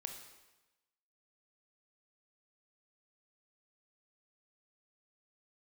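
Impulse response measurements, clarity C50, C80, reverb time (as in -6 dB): 6.0 dB, 8.5 dB, 1.1 s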